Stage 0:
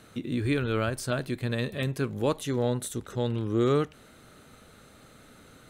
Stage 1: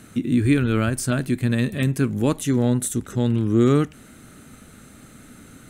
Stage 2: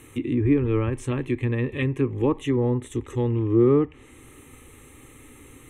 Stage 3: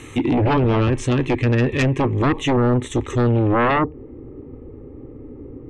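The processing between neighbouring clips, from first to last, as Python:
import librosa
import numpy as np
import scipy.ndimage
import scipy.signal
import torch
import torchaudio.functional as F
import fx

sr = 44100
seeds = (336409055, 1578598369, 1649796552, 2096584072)

y1 = fx.graphic_eq(x, sr, hz=(250, 500, 1000, 4000, 8000), db=(5, -7, -5, -7, 4))
y1 = y1 * 10.0 ** (8.0 / 20.0)
y2 = fx.env_lowpass_down(y1, sr, base_hz=1200.0, full_db=-15.0)
y2 = fx.fixed_phaser(y2, sr, hz=980.0, stages=8)
y2 = y2 * 10.0 ** (2.5 / 20.0)
y3 = fx.filter_sweep_lowpass(y2, sr, from_hz=5700.0, to_hz=460.0, start_s=3.32, end_s=3.94, q=1.5)
y3 = fx.fold_sine(y3, sr, drive_db=12, ceiling_db=-8.0)
y3 = y3 * 10.0 ** (-5.5 / 20.0)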